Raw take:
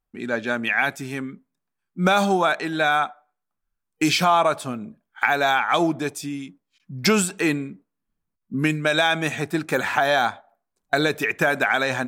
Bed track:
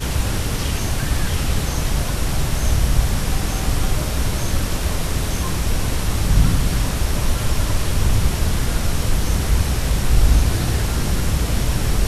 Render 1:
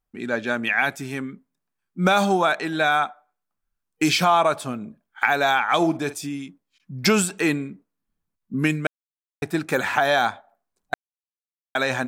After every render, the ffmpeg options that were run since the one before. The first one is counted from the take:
ffmpeg -i in.wav -filter_complex "[0:a]asettb=1/sr,asplit=3[link_01][link_02][link_03];[link_01]atrim=end=5.774[link_04];[link_02]atrim=start=5.77:end=6.27,asetpts=PTS-STARTPTS,afade=type=in:duration=0.004:curve=qsin,afade=type=out:start_time=0.496:duration=0.004:curve=qsin,asplit=2[link_05][link_06];[link_06]adelay=49,volume=-13.5dB[link_07];[link_05][link_07]amix=inputs=2:normalize=0,atrim=end_sample=22050[link_08];[link_03]atrim=start=6.266[link_09];[link_04][link_08]acrossfade=duration=0.004:curve1=hsin:curve2=qsin[link_10];[link_10][link_09]acrossfade=duration=0.004:curve1=qsin:curve2=hsin,asplit=5[link_11][link_12][link_13][link_14][link_15];[link_11]atrim=end=8.87,asetpts=PTS-STARTPTS,afade=type=out:start_time=8.866:duration=0.004:curve=hsin[link_16];[link_12]atrim=start=8.87:end=9.42,asetpts=PTS-STARTPTS,volume=0[link_17];[link_13]atrim=start=9.42:end=10.94,asetpts=PTS-STARTPTS,afade=type=in:duration=0.004:curve=hsin,afade=type=out:start_time=1.516:duration=0.004:curve=hsin[link_18];[link_14]atrim=start=10.94:end=11.75,asetpts=PTS-STARTPTS,volume=0[link_19];[link_15]atrim=start=11.75,asetpts=PTS-STARTPTS,afade=type=in:duration=0.004:curve=hsin[link_20];[link_16][link_17][link_18][link_19][link_20]concat=n=5:v=0:a=1" out.wav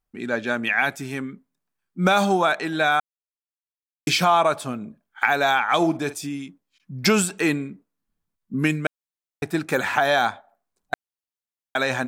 ffmpeg -i in.wav -filter_complex "[0:a]asplit=3[link_01][link_02][link_03];[link_01]atrim=end=3,asetpts=PTS-STARTPTS,afade=type=out:start_time=2.996:duration=0.004:curve=hsin[link_04];[link_02]atrim=start=3:end=4.07,asetpts=PTS-STARTPTS,volume=0[link_05];[link_03]atrim=start=4.07,asetpts=PTS-STARTPTS,afade=type=in:duration=0.004:curve=hsin[link_06];[link_04][link_05][link_06]concat=n=3:v=0:a=1" out.wav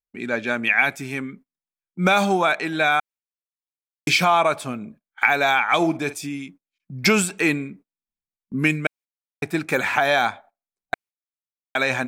ffmpeg -i in.wav -af "agate=range=-19dB:threshold=-45dB:ratio=16:detection=peak,equalizer=frequency=2300:width=4.6:gain=7.5" out.wav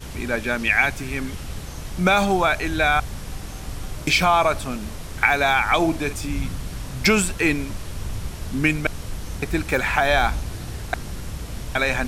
ffmpeg -i in.wav -i bed.wav -filter_complex "[1:a]volume=-12.5dB[link_01];[0:a][link_01]amix=inputs=2:normalize=0" out.wav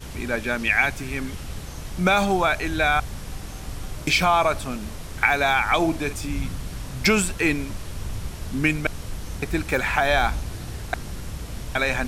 ffmpeg -i in.wav -af "volume=-1.5dB" out.wav

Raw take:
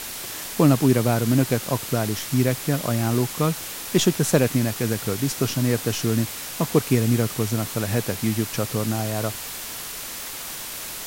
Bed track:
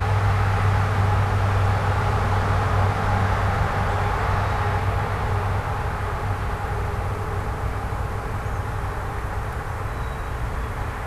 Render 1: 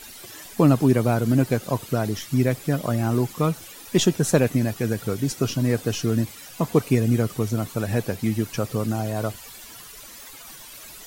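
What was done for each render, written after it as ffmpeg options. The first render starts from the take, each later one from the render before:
ffmpeg -i in.wav -af "afftdn=noise_reduction=13:noise_floor=-34" out.wav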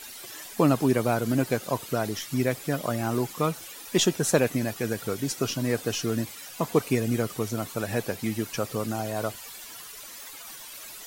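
ffmpeg -i in.wav -af "lowshelf=frequency=240:gain=-10.5" out.wav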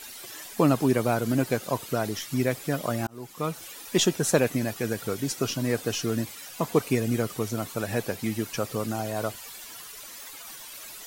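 ffmpeg -i in.wav -filter_complex "[0:a]asplit=2[link_01][link_02];[link_01]atrim=end=3.07,asetpts=PTS-STARTPTS,afade=type=out:start_time=3.066:duration=0.004:curve=hsin[link_03];[link_02]atrim=start=3.07,asetpts=PTS-STARTPTS,afade=type=in:duration=0.59[link_04];[link_03][link_04]concat=n=2:v=0:a=1" out.wav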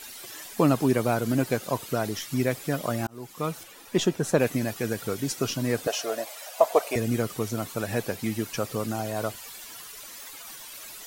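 ffmpeg -i in.wav -filter_complex "[0:a]asettb=1/sr,asplit=3[link_01][link_02][link_03];[link_01]atrim=end=3.634[link_04];[link_02]atrim=start=3.63:end=4.4,asetpts=PTS-STARTPTS,afade=type=in:duration=0.004:curve=qsin,afade=type=out:start_time=0.766:duration=0.004:curve=qsin,highshelf=frequency=2600:gain=-8.5[link_05];[link_03]atrim=start=4.396[link_06];[link_04][link_05]acrossfade=duration=0.004:curve1=hsin:curve2=qsin[link_07];[link_07][link_06]acrossfade=duration=0.004:curve1=qsin:curve2=hsin,asettb=1/sr,asplit=3[link_08][link_09][link_10];[link_08]atrim=end=5.874[link_11];[link_09]atrim=start=5.87:end=6.96,asetpts=PTS-STARTPTS,afade=type=in:duration=0.004:curve=qsin,afade=type=out:start_time=1.086:duration=0.004:curve=qsin,highpass=frequency=630:width_type=q:width=6.3[link_12];[link_10]atrim=start=6.956[link_13];[link_11][link_12]acrossfade=duration=0.004:curve1=hsin:curve2=qsin[link_14];[link_14][link_13]acrossfade=duration=0.004:curve1=qsin:curve2=hsin" out.wav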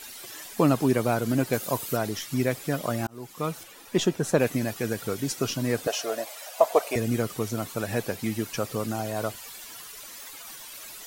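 ffmpeg -i in.wav -filter_complex "[0:a]asettb=1/sr,asplit=3[link_01][link_02][link_03];[link_01]atrim=end=1.534[link_04];[link_02]atrim=start=1.53:end=1.97,asetpts=PTS-STARTPTS,afade=type=in:duration=0.004:curve=qsin,afade=type=out:start_time=0.436:duration=0.004:curve=qsin,highshelf=frequency=8600:gain=10.5[link_05];[link_03]atrim=start=1.966[link_06];[link_04][link_05]acrossfade=duration=0.004:curve1=hsin:curve2=qsin[link_07];[link_07][link_06]acrossfade=duration=0.004:curve1=qsin:curve2=hsin" out.wav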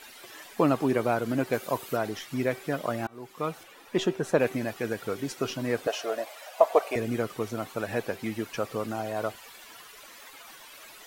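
ffmpeg -i in.wav -af "bass=frequency=250:gain=-7,treble=frequency=4000:gain=-10,bandreject=frequency=383.8:width_type=h:width=4,bandreject=frequency=767.6:width_type=h:width=4,bandreject=frequency=1151.4:width_type=h:width=4,bandreject=frequency=1535.2:width_type=h:width=4,bandreject=frequency=1919:width_type=h:width=4,bandreject=frequency=2302.8:width_type=h:width=4,bandreject=frequency=2686.6:width_type=h:width=4,bandreject=frequency=3070.4:width_type=h:width=4,bandreject=frequency=3454.2:width_type=h:width=4,bandreject=frequency=3838:width_type=h:width=4,bandreject=frequency=4221.8:width_type=h:width=4" out.wav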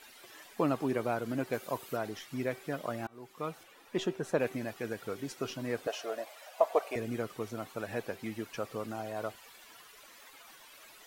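ffmpeg -i in.wav -af "volume=-6.5dB" out.wav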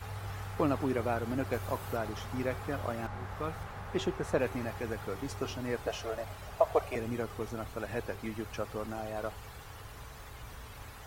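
ffmpeg -i in.wav -i bed.wav -filter_complex "[1:a]volume=-20.5dB[link_01];[0:a][link_01]amix=inputs=2:normalize=0" out.wav

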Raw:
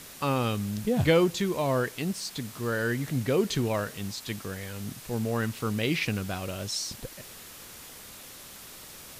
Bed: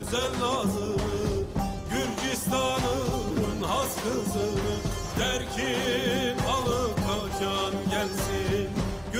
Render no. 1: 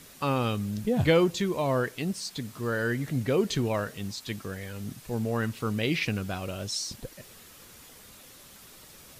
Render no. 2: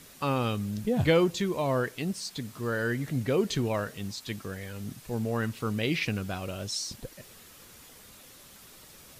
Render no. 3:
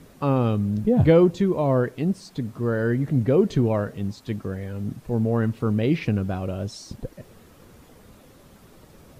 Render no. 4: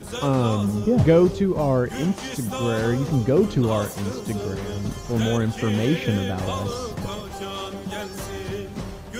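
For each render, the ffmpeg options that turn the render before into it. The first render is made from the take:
ffmpeg -i in.wav -af "afftdn=noise_reduction=6:noise_floor=-46" out.wav
ffmpeg -i in.wav -af "volume=-1dB" out.wav
ffmpeg -i in.wav -af "tiltshelf=frequency=1400:gain=9" out.wav
ffmpeg -i in.wav -i bed.wav -filter_complex "[1:a]volume=-3.5dB[link_01];[0:a][link_01]amix=inputs=2:normalize=0" out.wav

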